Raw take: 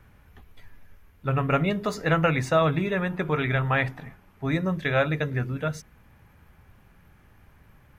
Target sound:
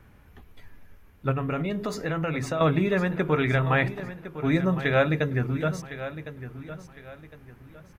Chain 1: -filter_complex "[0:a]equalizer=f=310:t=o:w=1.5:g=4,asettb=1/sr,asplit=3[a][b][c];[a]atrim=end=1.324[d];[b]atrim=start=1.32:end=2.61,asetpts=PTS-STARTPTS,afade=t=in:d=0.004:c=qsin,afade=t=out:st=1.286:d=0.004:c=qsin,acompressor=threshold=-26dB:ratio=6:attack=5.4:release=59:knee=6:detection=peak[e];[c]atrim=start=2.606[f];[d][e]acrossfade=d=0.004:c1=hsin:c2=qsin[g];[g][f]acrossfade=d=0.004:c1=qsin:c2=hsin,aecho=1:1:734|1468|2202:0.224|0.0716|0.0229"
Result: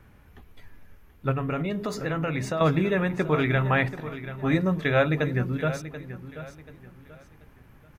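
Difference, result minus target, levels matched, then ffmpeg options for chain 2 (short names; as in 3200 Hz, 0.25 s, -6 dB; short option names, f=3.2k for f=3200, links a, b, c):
echo 0.324 s early
-filter_complex "[0:a]equalizer=f=310:t=o:w=1.5:g=4,asettb=1/sr,asplit=3[a][b][c];[a]atrim=end=1.324[d];[b]atrim=start=1.32:end=2.61,asetpts=PTS-STARTPTS,afade=t=in:d=0.004:c=qsin,afade=t=out:st=1.286:d=0.004:c=qsin,acompressor=threshold=-26dB:ratio=6:attack=5.4:release=59:knee=6:detection=peak[e];[c]atrim=start=2.606[f];[d][e]acrossfade=d=0.004:c1=hsin:c2=qsin[g];[g][f]acrossfade=d=0.004:c1=qsin:c2=hsin,aecho=1:1:1058|2116|3174:0.224|0.0716|0.0229"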